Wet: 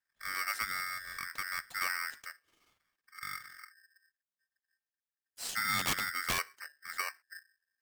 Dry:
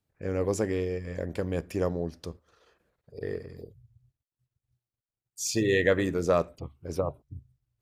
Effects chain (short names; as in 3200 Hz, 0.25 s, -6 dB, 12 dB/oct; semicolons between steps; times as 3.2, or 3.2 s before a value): 1.81–2.22 transient shaper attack +4 dB, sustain +8 dB; 5.79–6.39 wrapped overs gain 17 dB; polarity switched at an audio rate 1700 Hz; gain -8 dB